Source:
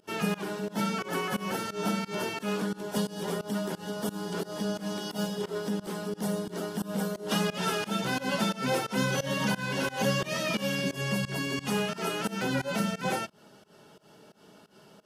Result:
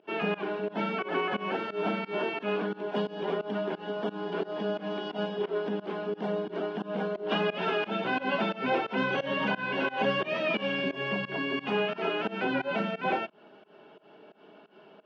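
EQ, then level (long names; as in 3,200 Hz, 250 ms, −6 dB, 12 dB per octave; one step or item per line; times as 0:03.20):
loudspeaker in its box 390–2,500 Hz, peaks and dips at 520 Hz −7 dB, 900 Hz −6 dB, 1,300 Hz −8 dB, 1,900 Hz −9 dB
+8.0 dB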